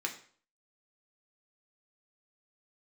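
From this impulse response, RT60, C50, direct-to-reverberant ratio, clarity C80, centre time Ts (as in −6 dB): 0.50 s, 10.5 dB, 1.0 dB, 14.5 dB, 14 ms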